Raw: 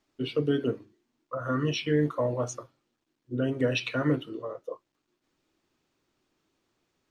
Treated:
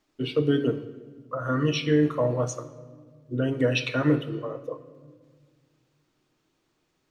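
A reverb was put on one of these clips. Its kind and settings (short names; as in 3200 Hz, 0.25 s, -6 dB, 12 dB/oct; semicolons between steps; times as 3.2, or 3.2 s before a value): shoebox room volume 1900 m³, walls mixed, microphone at 0.53 m; gain +2.5 dB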